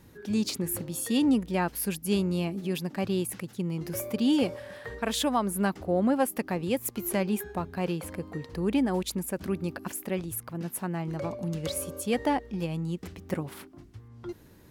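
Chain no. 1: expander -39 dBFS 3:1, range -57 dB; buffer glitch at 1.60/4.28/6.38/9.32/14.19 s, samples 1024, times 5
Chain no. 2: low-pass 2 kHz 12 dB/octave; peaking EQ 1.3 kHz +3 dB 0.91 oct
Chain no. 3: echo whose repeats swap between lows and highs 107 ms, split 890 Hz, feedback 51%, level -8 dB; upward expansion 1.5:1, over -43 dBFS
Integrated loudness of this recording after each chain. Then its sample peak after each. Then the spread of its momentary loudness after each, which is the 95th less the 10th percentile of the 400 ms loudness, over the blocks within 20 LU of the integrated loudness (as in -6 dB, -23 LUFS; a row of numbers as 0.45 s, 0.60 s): -29.5 LUFS, -30.5 LUFS, -32.5 LUFS; -15.0 dBFS, -14.0 dBFS, -14.0 dBFS; 9 LU, 13 LU, 13 LU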